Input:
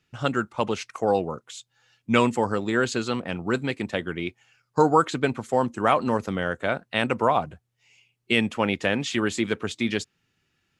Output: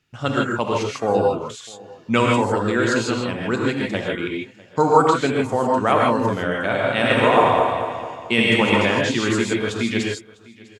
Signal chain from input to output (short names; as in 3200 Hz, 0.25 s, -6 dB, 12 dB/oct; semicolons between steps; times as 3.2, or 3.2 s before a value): 6.59–8.85 regenerating reverse delay 0.112 s, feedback 67%, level -2 dB; echo 0.651 s -22.5 dB; non-linear reverb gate 0.18 s rising, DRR -1.5 dB; gain +1 dB